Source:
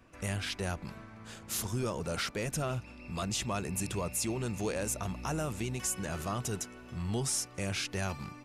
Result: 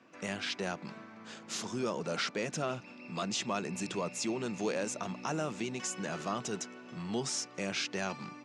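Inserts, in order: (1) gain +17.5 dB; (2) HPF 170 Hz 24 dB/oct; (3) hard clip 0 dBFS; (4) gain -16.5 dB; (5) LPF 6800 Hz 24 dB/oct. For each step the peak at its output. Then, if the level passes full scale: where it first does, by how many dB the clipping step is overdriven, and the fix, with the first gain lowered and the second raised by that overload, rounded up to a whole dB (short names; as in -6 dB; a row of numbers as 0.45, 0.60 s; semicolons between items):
-6.0, -3.0, -3.0, -19.5, -20.0 dBFS; no overload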